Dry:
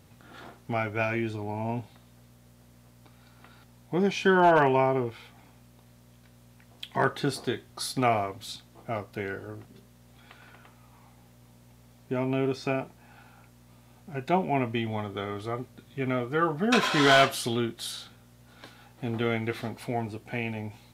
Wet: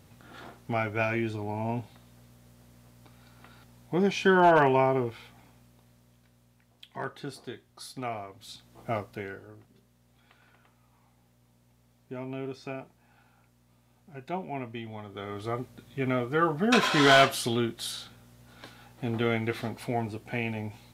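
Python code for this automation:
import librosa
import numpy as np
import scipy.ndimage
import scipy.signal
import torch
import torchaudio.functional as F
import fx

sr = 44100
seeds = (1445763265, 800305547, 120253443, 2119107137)

y = fx.gain(x, sr, db=fx.line((5.13, 0.0), (6.85, -10.5), (8.28, -10.5), (8.91, 2.0), (9.49, -9.0), (15.02, -9.0), (15.48, 0.5)))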